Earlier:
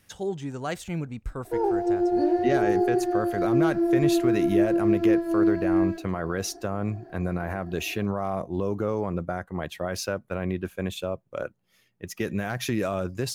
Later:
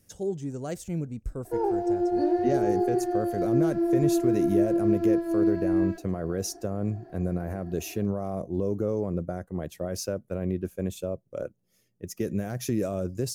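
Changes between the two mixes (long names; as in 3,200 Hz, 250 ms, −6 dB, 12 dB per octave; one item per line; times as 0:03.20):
speech: add flat-topped bell 1,800 Hz −11.5 dB 2.7 octaves
background: send −9.5 dB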